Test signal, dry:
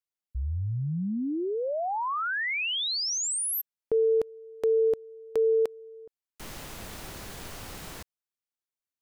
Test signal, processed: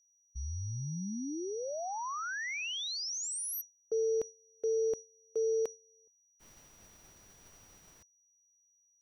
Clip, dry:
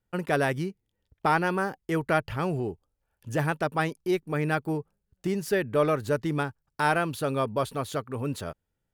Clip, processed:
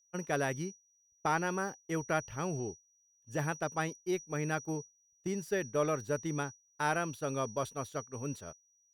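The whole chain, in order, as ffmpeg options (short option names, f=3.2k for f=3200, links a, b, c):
-af "aeval=exprs='val(0)+0.0112*sin(2*PI*5800*n/s)':c=same,agate=range=-22dB:threshold=-29dB:ratio=3:release=200:detection=peak,volume=-7.5dB"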